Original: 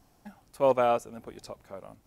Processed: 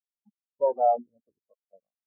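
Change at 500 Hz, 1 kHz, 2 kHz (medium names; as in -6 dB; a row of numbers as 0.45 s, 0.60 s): -0.5 dB, +3.0 dB, under -30 dB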